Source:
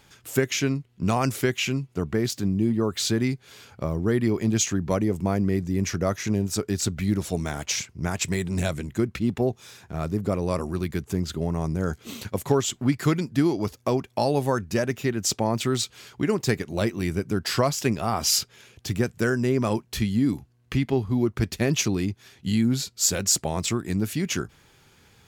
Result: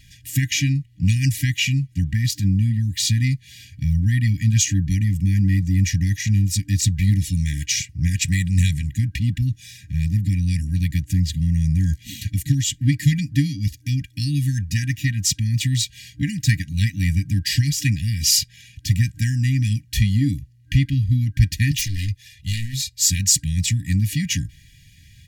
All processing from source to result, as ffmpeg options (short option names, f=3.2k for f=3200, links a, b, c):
-filter_complex "[0:a]asettb=1/sr,asplit=3[a][b][c];[a]atrim=end=21.714[d];[b]atrim=start=21.71:end=22.99,asetpts=PTS-STARTPTS,afade=t=in:d=0.004:c=qsin,afade=t=out:st=1.276:d=0.004:c=qsin,aecho=1:1:2.9:0.46,atrim=end_sample=56448,aeval=exprs='0.0841*(abs(mod(val(0)/0.0841+3,4)-2)-1)':c=same,equalizer=f=350:t=o:w=1.7:g=-14[e];[c]atrim=start=22.986[f];[d][e]acrossfade=d=0.004:c1=hsin:c2=qsin[g];[g][f]acrossfade=d=0.004:c1=qsin:c2=hsin,aecho=1:1:2.1:0.75,afftfilt=real='re*(1-between(b*sr/4096,300,1600))':imag='im*(1-between(b*sr/4096,300,1600))':win_size=4096:overlap=0.75,lowshelf=f=250:g=7,volume=3dB"